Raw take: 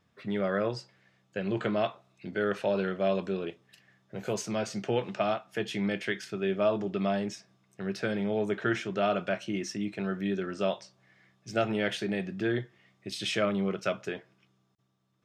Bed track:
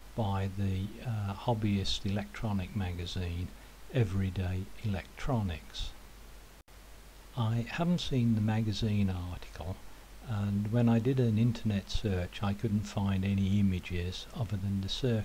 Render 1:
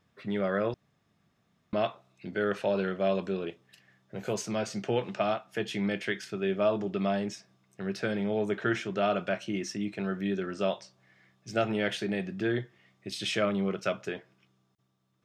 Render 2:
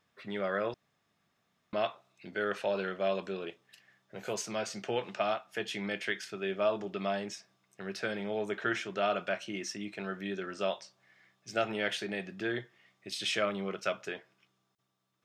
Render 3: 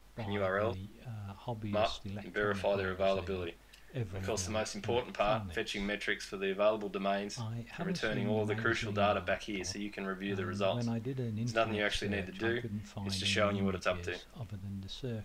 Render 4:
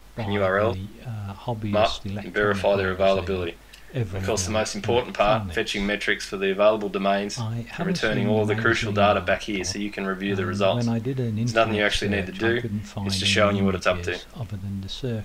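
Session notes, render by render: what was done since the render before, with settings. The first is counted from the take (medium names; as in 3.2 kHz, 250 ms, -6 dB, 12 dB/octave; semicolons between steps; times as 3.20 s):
0.74–1.73 s: room tone
bass shelf 350 Hz -11.5 dB
add bed track -9 dB
trim +11 dB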